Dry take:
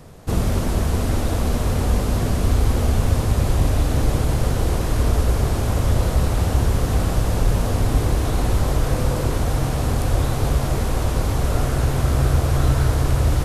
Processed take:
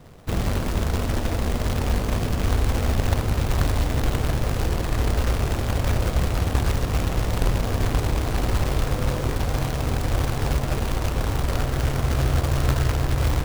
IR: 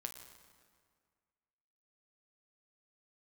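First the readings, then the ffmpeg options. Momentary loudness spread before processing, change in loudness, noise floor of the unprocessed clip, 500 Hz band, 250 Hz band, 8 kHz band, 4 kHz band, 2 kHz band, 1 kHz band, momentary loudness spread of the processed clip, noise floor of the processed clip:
3 LU, -3.5 dB, -23 dBFS, -3.0 dB, -3.5 dB, -4.0 dB, -0.5 dB, +0.5 dB, -2.0 dB, 3 LU, -27 dBFS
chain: -af "adynamicsmooth=sensitivity=2:basefreq=3200,acrusher=bits=2:mode=log:mix=0:aa=0.000001,volume=0.631"

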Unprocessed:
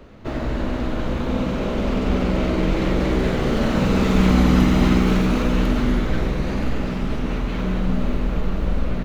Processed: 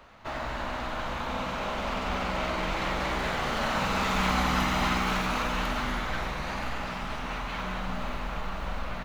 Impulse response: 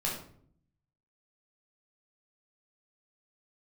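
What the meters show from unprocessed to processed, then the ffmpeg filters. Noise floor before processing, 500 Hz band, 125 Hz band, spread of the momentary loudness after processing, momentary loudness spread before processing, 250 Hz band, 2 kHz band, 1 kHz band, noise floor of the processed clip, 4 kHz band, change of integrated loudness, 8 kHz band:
-25 dBFS, -10.0 dB, -14.0 dB, 9 LU, 9 LU, -15.0 dB, -0.5 dB, +0.5 dB, -35 dBFS, -1.0 dB, -9.0 dB, no reading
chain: -af "lowshelf=f=580:t=q:w=1.5:g=-12,volume=0.841"

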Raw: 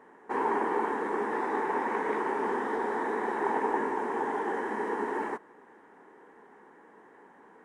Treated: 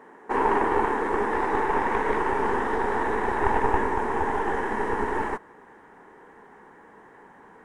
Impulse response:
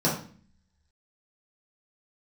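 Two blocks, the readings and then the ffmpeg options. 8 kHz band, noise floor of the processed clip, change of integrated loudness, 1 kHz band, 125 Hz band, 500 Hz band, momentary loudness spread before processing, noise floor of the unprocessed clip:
no reading, -51 dBFS, +5.5 dB, +5.5 dB, +15.0 dB, +4.5 dB, 4 LU, -56 dBFS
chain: -af "aeval=exprs='0.168*(cos(1*acos(clip(val(0)/0.168,-1,1)))-cos(1*PI/2))+0.0422*(cos(2*acos(clip(val(0)/0.168,-1,1)))-cos(2*PI/2))':c=same,asubboost=boost=5:cutoff=120,volume=2"

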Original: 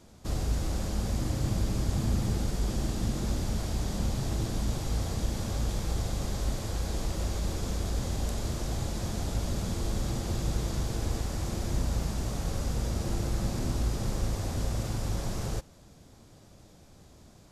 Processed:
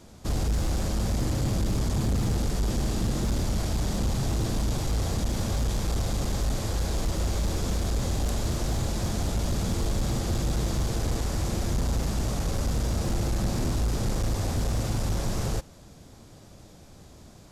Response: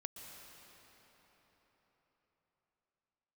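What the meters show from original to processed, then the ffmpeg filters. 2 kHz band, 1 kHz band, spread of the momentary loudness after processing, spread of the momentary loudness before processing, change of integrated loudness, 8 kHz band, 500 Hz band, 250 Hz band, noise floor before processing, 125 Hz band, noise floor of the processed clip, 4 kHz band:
+4.0 dB, +4.0 dB, 2 LU, 3 LU, +3.5 dB, +4.0 dB, +4.0 dB, +4.0 dB, -55 dBFS, +3.5 dB, -50 dBFS, +4.0 dB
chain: -af "volume=21.1,asoftclip=hard,volume=0.0473,volume=1.78"

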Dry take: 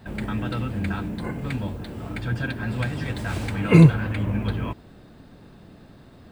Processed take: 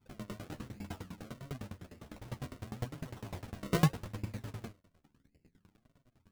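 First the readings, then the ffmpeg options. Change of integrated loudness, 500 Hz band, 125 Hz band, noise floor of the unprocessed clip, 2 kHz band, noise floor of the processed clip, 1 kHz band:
-16.0 dB, -14.5 dB, -17.0 dB, -49 dBFS, -17.0 dB, -76 dBFS, -10.5 dB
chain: -af "anlmdn=0.1,aemphasis=mode=production:type=75fm,acrusher=samples=36:mix=1:aa=0.000001:lfo=1:lforange=36:lforate=0.88,flanger=delay=6.9:depth=8.2:regen=7:speed=0.67:shape=triangular,aeval=exprs='val(0)*pow(10,-23*if(lt(mod(9.9*n/s,1),2*abs(9.9)/1000),1-mod(9.9*n/s,1)/(2*abs(9.9)/1000),(mod(9.9*n/s,1)-2*abs(9.9)/1000)/(1-2*abs(9.9)/1000))/20)':c=same,volume=0.501"

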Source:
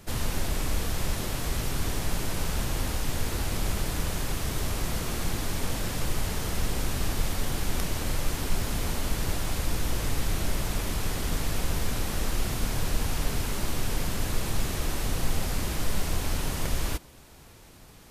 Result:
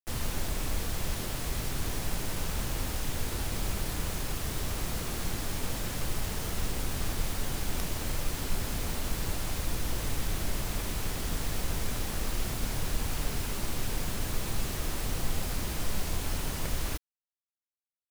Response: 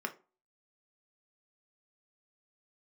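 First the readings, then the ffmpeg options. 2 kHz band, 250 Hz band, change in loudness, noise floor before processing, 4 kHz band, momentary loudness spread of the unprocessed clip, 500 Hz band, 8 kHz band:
-3.5 dB, -4.0 dB, -3.0 dB, -50 dBFS, -3.0 dB, 1 LU, -4.0 dB, -2.5 dB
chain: -af "acrusher=bits=5:mix=0:aa=0.000001,volume=0.631"

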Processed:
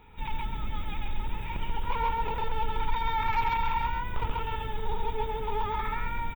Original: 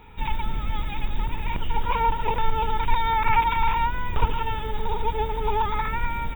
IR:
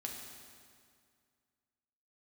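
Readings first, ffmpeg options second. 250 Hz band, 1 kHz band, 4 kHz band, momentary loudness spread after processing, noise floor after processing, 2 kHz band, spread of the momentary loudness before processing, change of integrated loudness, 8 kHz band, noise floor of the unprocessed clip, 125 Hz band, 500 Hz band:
-5.5 dB, -6.0 dB, -5.5 dB, 9 LU, -35 dBFS, -6.0 dB, 10 LU, -6.0 dB, no reading, -30 dBFS, -6.0 dB, -5.5 dB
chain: -filter_complex "[0:a]asoftclip=type=tanh:threshold=0.224,asplit=2[s0][s1];[s1]aecho=0:1:134:0.708[s2];[s0][s2]amix=inputs=2:normalize=0,volume=0.473"

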